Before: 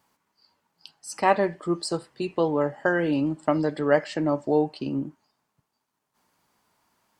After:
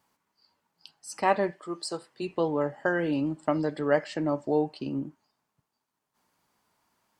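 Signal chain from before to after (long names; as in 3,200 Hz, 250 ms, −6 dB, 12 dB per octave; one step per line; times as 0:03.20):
0:01.50–0:02.21: high-pass filter 830 Hz → 270 Hz 6 dB per octave
level −3.5 dB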